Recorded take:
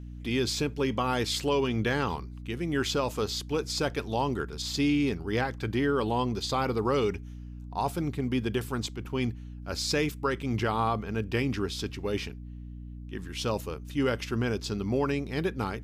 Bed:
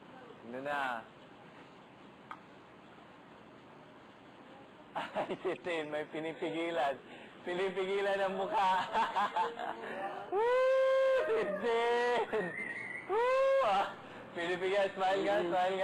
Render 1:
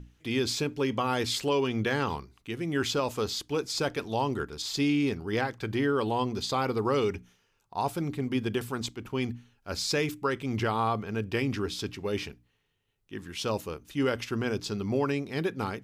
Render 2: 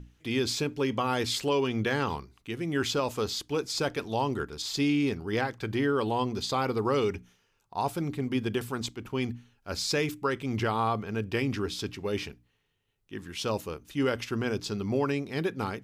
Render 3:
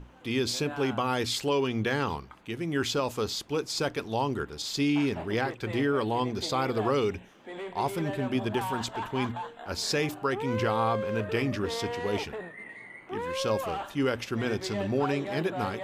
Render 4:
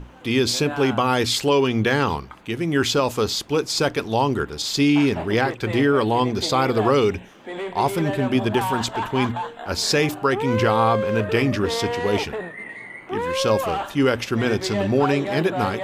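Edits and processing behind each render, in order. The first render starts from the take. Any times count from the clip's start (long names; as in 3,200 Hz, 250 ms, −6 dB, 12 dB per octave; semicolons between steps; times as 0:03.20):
mains-hum notches 60/120/180/240/300 Hz
no processing that can be heard
mix in bed −4 dB
level +8.5 dB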